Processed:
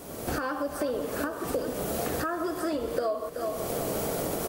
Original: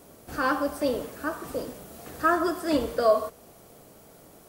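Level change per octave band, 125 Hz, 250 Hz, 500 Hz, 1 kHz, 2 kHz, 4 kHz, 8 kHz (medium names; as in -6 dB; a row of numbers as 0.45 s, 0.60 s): +6.0 dB, -2.0 dB, -2.0 dB, -4.5 dB, -5.0 dB, -1.0 dB, +7.0 dB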